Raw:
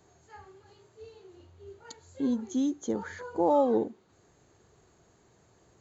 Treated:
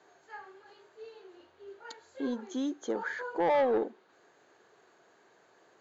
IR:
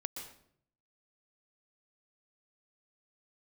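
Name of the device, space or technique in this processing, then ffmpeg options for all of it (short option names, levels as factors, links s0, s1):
intercom: -af "highpass=420,lowpass=4200,equalizer=f=1600:t=o:w=0.26:g=6,asoftclip=type=tanh:threshold=0.0596,volume=1.5"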